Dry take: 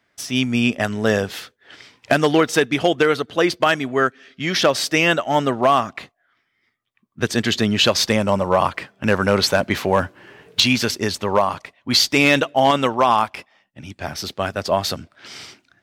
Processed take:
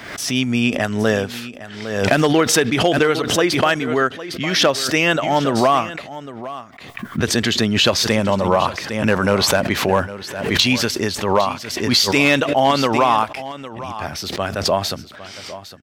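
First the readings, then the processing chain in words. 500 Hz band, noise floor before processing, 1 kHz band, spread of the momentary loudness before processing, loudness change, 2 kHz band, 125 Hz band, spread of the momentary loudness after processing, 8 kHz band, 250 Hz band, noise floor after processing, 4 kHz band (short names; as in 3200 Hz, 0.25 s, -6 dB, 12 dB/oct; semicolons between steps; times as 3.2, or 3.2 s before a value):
+1.0 dB, -69 dBFS, +1.0 dB, 13 LU, +1.0 dB, +1.0 dB, +2.5 dB, 16 LU, +4.0 dB, +2.0 dB, -37 dBFS, +1.5 dB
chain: on a send: echo 0.807 s -15 dB; on the sum: backwards sustainer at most 55 dB/s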